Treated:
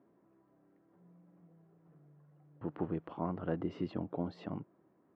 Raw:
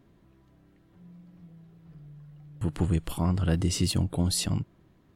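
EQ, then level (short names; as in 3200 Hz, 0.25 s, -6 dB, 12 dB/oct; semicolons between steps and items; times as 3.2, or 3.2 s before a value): HPF 300 Hz 12 dB/oct; LPF 1200 Hz 12 dB/oct; air absorption 160 m; -2.0 dB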